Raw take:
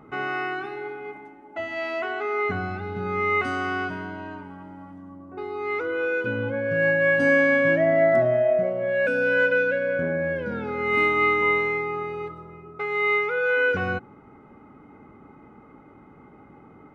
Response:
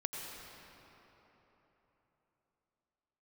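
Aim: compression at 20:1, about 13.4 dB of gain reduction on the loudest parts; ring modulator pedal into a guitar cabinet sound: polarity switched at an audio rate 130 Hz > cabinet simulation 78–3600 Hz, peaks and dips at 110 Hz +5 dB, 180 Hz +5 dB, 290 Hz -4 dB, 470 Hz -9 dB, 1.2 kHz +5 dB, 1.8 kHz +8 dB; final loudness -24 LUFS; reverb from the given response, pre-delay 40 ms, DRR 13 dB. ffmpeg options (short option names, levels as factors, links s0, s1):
-filter_complex "[0:a]acompressor=threshold=0.0355:ratio=20,asplit=2[s0][s1];[1:a]atrim=start_sample=2205,adelay=40[s2];[s1][s2]afir=irnorm=-1:irlink=0,volume=0.188[s3];[s0][s3]amix=inputs=2:normalize=0,aeval=exprs='val(0)*sgn(sin(2*PI*130*n/s))':c=same,highpass=78,equalizer=f=110:t=q:w=4:g=5,equalizer=f=180:t=q:w=4:g=5,equalizer=f=290:t=q:w=4:g=-4,equalizer=f=470:t=q:w=4:g=-9,equalizer=f=1200:t=q:w=4:g=5,equalizer=f=1800:t=q:w=4:g=8,lowpass=f=3600:w=0.5412,lowpass=f=3600:w=1.3066,volume=2.11"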